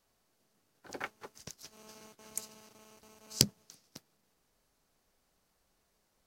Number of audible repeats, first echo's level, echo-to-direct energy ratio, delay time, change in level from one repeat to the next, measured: no echo audible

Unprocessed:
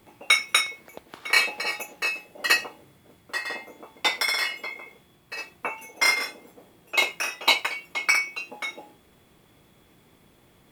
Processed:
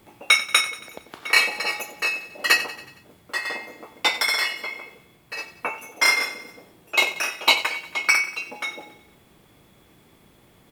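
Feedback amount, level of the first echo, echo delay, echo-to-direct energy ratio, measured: 53%, −15.0 dB, 92 ms, −13.5 dB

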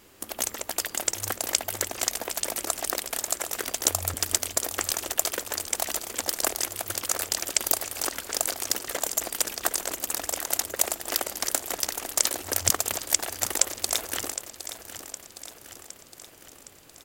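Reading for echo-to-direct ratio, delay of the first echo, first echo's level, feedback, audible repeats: −10.5 dB, 763 ms, −12.0 dB, 57%, 5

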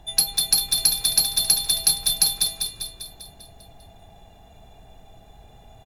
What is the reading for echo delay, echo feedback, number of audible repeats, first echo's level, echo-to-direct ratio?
198 ms, 56%, 7, −4.5 dB, −3.0 dB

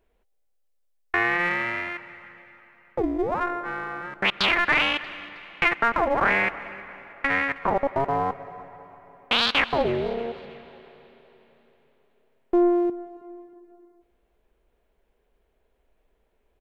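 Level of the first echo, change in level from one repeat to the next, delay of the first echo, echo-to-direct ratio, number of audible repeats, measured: −21.0 dB, −7.5 dB, 317 ms, −20.0 dB, 2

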